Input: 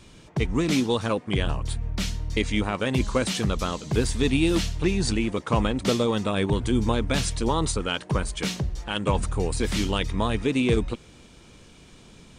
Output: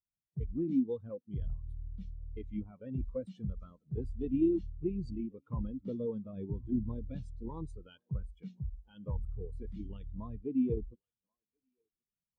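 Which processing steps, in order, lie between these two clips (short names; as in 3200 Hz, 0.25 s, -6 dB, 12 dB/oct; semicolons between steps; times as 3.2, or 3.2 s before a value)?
one-sided clip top -21.5 dBFS; thinning echo 1.082 s, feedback 61%, high-pass 420 Hz, level -16 dB; spectral expander 2.5:1; gain -7.5 dB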